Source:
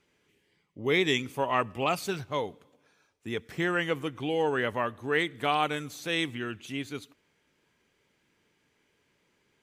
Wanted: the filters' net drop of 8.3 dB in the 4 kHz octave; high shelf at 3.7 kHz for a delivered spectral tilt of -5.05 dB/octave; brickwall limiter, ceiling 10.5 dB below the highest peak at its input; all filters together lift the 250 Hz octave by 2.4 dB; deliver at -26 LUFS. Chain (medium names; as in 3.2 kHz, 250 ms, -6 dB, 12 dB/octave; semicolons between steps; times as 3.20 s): peaking EQ 250 Hz +3.5 dB; treble shelf 3.7 kHz -9 dB; peaking EQ 4 kHz -6 dB; trim +8.5 dB; peak limiter -14.5 dBFS